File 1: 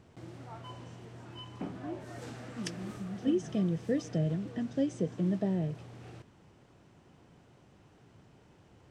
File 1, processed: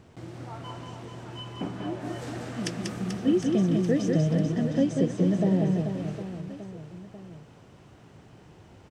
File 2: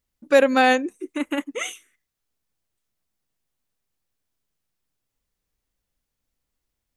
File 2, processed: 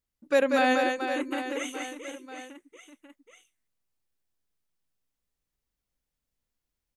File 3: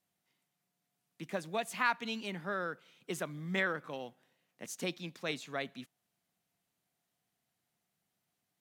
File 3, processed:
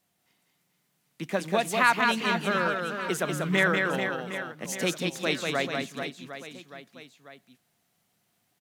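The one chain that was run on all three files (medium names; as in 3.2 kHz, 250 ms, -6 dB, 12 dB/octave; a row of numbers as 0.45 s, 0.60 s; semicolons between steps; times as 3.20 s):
reverse bouncing-ball echo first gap 190 ms, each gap 1.3×, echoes 5; normalise loudness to -27 LUFS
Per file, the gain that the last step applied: +5.5 dB, -7.5 dB, +9.0 dB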